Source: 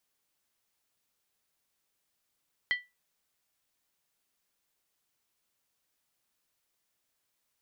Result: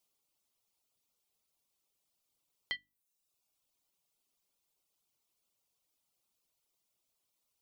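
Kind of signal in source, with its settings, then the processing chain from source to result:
skin hit, lowest mode 1970 Hz, decay 0.22 s, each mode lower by 9 dB, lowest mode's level -21.5 dB
reverb removal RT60 0.82 s; bell 1700 Hz -13.5 dB 0.52 oct; notches 50/100/150/200/250/300 Hz

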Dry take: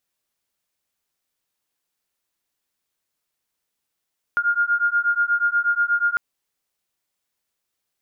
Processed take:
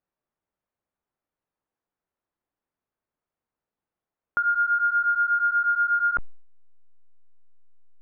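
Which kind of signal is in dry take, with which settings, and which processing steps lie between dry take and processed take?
beating tones 1410 Hz, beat 8.3 Hz, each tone -20.5 dBFS 1.80 s
in parallel at -10 dB: backlash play -30 dBFS; on the sum: LPF 1200 Hz 12 dB/oct; sustainer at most 80 dB/s

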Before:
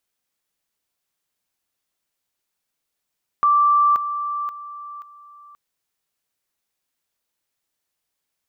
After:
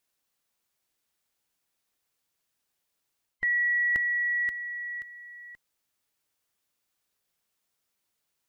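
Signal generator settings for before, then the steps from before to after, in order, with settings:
level ladder 1170 Hz -12.5 dBFS, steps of -10 dB, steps 4, 0.53 s 0.00 s
band inversion scrambler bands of 1000 Hz; reverse; compressor 6:1, threshold -25 dBFS; reverse

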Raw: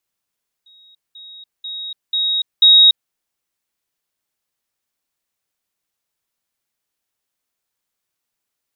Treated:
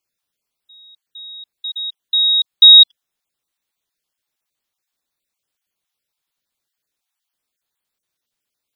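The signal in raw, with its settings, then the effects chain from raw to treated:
level ladder 3780 Hz -45.5 dBFS, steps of 10 dB, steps 5, 0.29 s 0.20 s
random spectral dropouts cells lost 23%; bell 3600 Hz +4.5 dB 0.6 oct

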